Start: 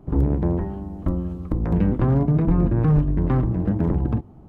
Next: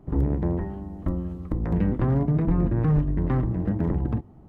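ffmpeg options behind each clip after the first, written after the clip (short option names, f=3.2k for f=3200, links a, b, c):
-af "equalizer=f=1.9k:w=7.4:g=6,volume=-3.5dB"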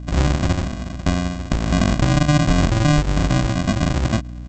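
-af "aresample=16000,acrusher=samples=36:mix=1:aa=0.000001,aresample=44100,aeval=exprs='val(0)+0.0158*(sin(2*PI*60*n/s)+sin(2*PI*2*60*n/s)/2+sin(2*PI*3*60*n/s)/3+sin(2*PI*4*60*n/s)/4+sin(2*PI*5*60*n/s)/5)':c=same,volume=5.5dB"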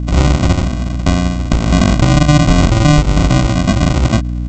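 -af "aeval=exprs='val(0)+0.0355*(sin(2*PI*60*n/s)+sin(2*PI*2*60*n/s)/2+sin(2*PI*3*60*n/s)/3+sin(2*PI*4*60*n/s)/4+sin(2*PI*5*60*n/s)/5)':c=same,asuperstop=centerf=1700:order=8:qfactor=6.6,apsyclip=8dB,volume=-1.5dB"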